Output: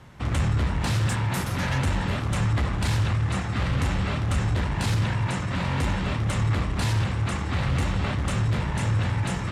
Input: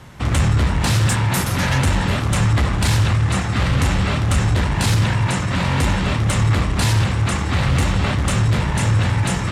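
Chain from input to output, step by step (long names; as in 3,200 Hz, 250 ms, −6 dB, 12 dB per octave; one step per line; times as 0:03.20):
high-shelf EQ 5,000 Hz −6 dB
level −7 dB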